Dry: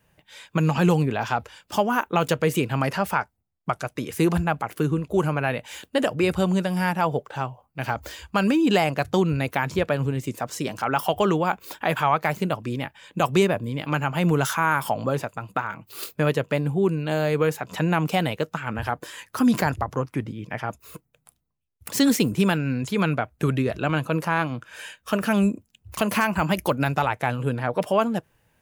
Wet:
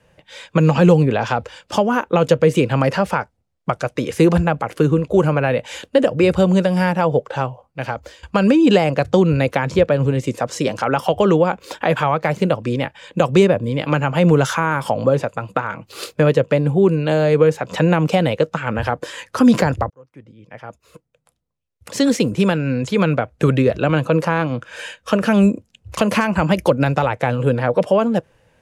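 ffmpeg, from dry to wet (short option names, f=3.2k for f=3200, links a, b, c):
-filter_complex "[0:a]asplit=3[a][b][c];[a]atrim=end=8.23,asetpts=PTS-STARTPTS,afade=t=out:st=7.45:d=0.78:silence=0.16788[d];[b]atrim=start=8.23:end=19.9,asetpts=PTS-STARTPTS,afade=t=in:d=0.004:c=hsin:silence=0.16788,afade=t=out:st=11.666:d=0.004:c=hsin[e];[c]atrim=start=19.9,asetpts=PTS-STARTPTS,afade=t=in:d=3.65[f];[d][e][f]concat=n=3:v=0:a=1,lowpass=7.7k,equalizer=f=520:t=o:w=0.33:g=10,acrossover=split=390[g][h];[h]acompressor=threshold=-25dB:ratio=2.5[i];[g][i]amix=inputs=2:normalize=0,volume=7dB"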